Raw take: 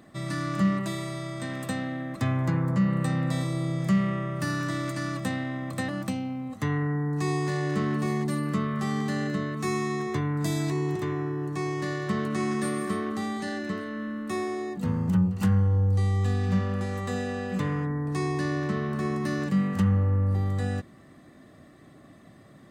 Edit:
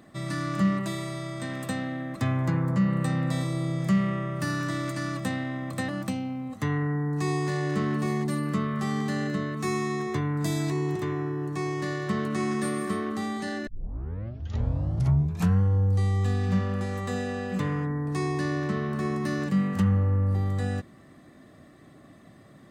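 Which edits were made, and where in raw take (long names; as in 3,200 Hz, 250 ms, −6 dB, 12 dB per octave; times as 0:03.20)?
0:13.67: tape start 1.93 s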